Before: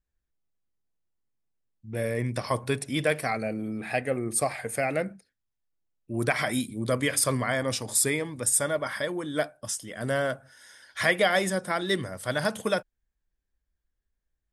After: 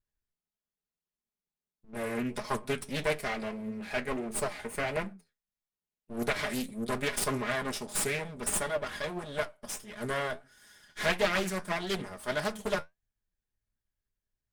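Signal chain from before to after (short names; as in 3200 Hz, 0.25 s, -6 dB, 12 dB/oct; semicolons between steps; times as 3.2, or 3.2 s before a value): minimum comb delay 4.8 ms; flange 1.6 Hz, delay 8.1 ms, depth 4.9 ms, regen +61%; Doppler distortion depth 0.4 ms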